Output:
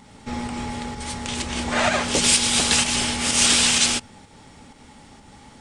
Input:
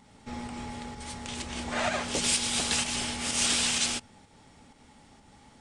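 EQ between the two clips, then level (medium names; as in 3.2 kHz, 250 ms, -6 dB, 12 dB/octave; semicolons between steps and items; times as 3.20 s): peaking EQ 690 Hz -2.5 dB 0.22 oct; +9.0 dB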